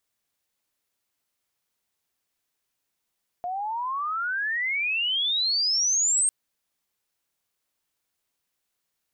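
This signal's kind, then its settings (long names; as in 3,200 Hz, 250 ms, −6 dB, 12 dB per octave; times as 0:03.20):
glide logarithmic 700 Hz → 8,600 Hz −27.5 dBFS → −19 dBFS 2.85 s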